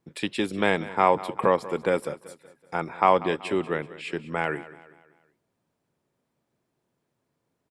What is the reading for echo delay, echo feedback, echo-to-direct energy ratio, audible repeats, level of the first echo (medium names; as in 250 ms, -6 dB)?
190 ms, 44%, -16.0 dB, 3, -17.0 dB